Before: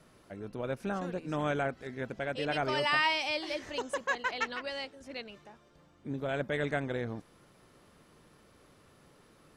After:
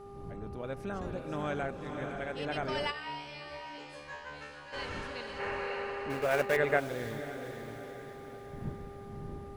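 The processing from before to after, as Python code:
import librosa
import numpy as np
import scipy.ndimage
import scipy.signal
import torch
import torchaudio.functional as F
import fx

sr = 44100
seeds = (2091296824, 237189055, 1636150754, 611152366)

p1 = fx.block_float(x, sr, bits=3, at=(6.1, 6.57))
p2 = fx.dmg_wind(p1, sr, seeds[0], corner_hz=180.0, level_db=-46.0)
p3 = p2 + fx.echo_diffused(p2, sr, ms=543, feedback_pct=53, wet_db=-5.0, dry=0)
p4 = fx.dmg_buzz(p3, sr, base_hz=400.0, harmonics=3, level_db=-45.0, tilt_db=-6, odd_only=False)
p5 = fx.comb_fb(p4, sr, f0_hz=73.0, decay_s=0.57, harmonics='all', damping=0.0, mix_pct=100, at=(2.9, 4.72), fade=0.02)
p6 = fx.spec_box(p5, sr, start_s=5.39, length_s=1.41, low_hz=360.0, high_hz=2900.0, gain_db=9)
y = p6 * librosa.db_to_amplitude(-4.0)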